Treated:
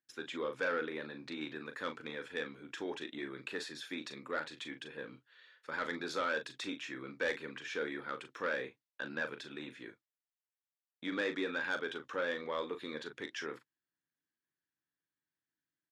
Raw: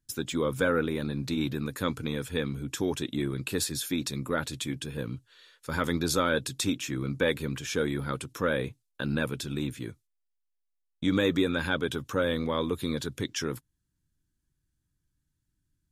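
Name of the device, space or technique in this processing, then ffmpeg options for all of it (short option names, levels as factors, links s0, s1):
intercom: -filter_complex "[0:a]highpass=390,lowpass=3600,equalizer=f=1800:t=o:w=0.53:g=6.5,asoftclip=type=tanh:threshold=0.1,asplit=2[s0][s1];[s1]adelay=39,volume=0.355[s2];[s0][s2]amix=inputs=2:normalize=0,volume=0.473"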